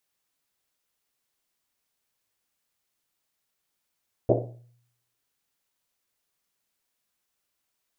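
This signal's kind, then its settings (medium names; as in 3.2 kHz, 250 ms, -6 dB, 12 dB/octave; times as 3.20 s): Risset drum, pitch 120 Hz, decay 0.75 s, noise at 490 Hz, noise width 410 Hz, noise 60%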